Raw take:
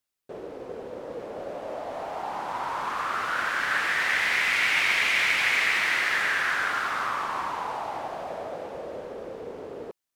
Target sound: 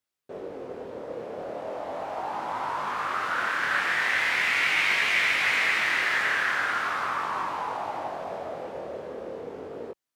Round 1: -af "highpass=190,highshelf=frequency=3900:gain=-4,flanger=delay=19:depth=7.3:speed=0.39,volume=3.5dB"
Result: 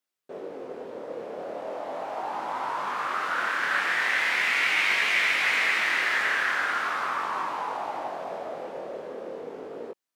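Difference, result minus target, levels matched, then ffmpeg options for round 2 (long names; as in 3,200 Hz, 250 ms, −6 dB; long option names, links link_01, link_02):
125 Hz band −6.0 dB
-af "highpass=62,highshelf=frequency=3900:gain=-4,flanger=delay=19:depth=7.3:speed=0.39,volume=3.5dB"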